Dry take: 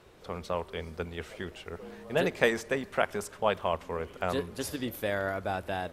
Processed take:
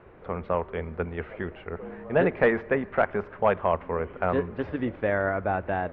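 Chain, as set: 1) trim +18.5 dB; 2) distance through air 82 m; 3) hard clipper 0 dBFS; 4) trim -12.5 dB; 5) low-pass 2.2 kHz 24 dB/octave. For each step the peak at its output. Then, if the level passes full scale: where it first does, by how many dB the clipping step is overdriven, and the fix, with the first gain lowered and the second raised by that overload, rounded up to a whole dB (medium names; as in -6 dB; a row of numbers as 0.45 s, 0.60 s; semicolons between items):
+10.5 dBFS, +9.5 dBFS, 0.0 dBFS, -12.5 dBFS, -11.0 dBFS; step 1, 9.5 dB; step 1 +8.5 dB, step 4 -2.5 dB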